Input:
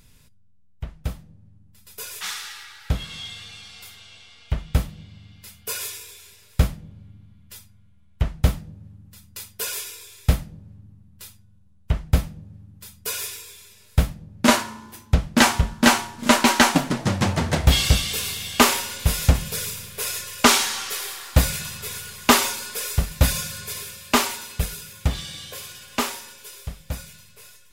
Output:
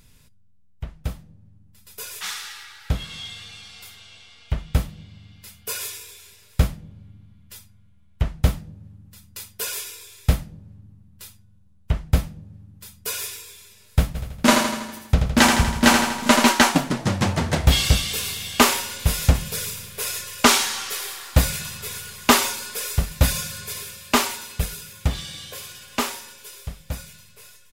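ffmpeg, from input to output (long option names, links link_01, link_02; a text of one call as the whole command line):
ffmpeg -i in.wav -filter_complex "[0:a]asplit=3[link_01][link_02][link_03];[link_01]afade=type=out:start_time=14.14:duration=0.02[link_04];[link_02]aecho=1:1:81|162|243|324|405|486|567:0.531|0.297|0.166|0.0932|0.0522|0.0292|0.0164,afade=type=in:start_time=14.14:duration=0.02,afade=type=out:start_time=16.5:duration=0.02[link_05];[link_03]afade=type=in:start_time=16.5:duration=0.02[link_06];[link_04][link_05][link_06]amix=inputs=3:normalize=0" out.wav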